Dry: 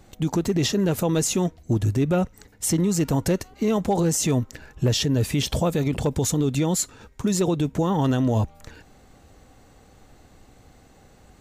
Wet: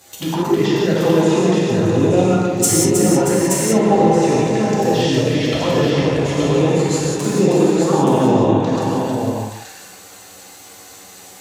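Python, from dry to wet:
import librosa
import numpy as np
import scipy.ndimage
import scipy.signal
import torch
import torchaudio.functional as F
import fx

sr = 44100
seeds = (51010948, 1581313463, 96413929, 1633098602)

p1 = fx.reverse_delay(x, sr, ms=132, wet_db=-3.5)
p2 = fx.env_lowpass_down(p1, sr, base_hz=1500.0, full_db=-18.5)
p3 = scipy.signal.sosfilt(scipy.signal.butter(2, 79.0, 'highpass', fs=sr, output='sos'), p2)
p4 = fx.env_flanger(p3, sr, rest_ms=11.7, full_db=-16.0)
p5 = fx.riaa(p4, sr, side='recording')
p6 = p5 + fx.echo_multitap(p5, sr, ms=(316, 630, 875), db=(-6.5, -10.5, -5.0), dry=0)
p7 = fx.rev_gated(p6, sr, seeds[0], gate_ms=210, shape='flat', drr_db=-4.5)
y = p7 * librosa.db_to_amplitude(7.0)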